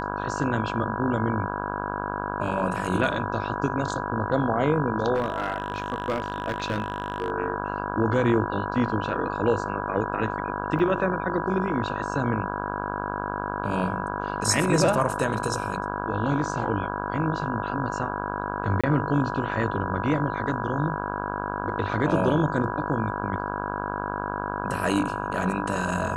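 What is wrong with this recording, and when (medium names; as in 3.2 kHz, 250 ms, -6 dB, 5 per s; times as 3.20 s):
buzz 50 Hz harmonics 33 -31 dBFS
whine 980 Hz -33 dBFS
5.14–7.30 s: clipped -20 dBFS
10.79 s: dropout 3.9 ms
18.81–18.84 s: dropout 26 ms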